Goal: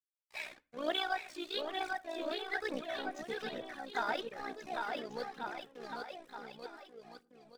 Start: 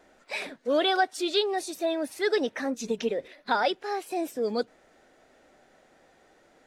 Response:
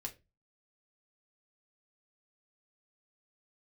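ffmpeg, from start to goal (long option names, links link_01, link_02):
-filter_complex "[0:a]agate=range=-33dB:threshold=-55dB:ratio=3:detection=peak,lowpass=frequency=3500:poles=1,equalizer=frequency=380:width_type=o:width=1.8:gain=-11,tremolo=f=61:d=0.667,aeval=exprs='sgn(val(0))*max(abs(val(0))-0.00299,0)':channel_layout=same,aecho=1:1:700|1260|1708|2066|2353:0.631|0.398|0.251|0.158|0.1,atempo=0.88,asplit=2[link_01][link_02];[1:a]atrim=start_sample=2205,asetrate=26019,aresample=44100[link_03];[link_02][link_03]afir=irnorm=-1:irlink=0,volume=-13.5dB[link_04];[link_01][link_04]amix=inputs=2:normalize=0,aphaser=in_gain=1:out_gain=1:delay=3.4:decay=0.47:speed=1.1:type=triangular,adynamicequalizer=threshold=0.00398:dfrequency=2400:dqfactor=0.7:tfrequency=2400:tqfactor=0.7:attack=5:release=100:ratio=0.375:range=3:mode=cutabove:tftype=highshelf,volume=-3.5dB"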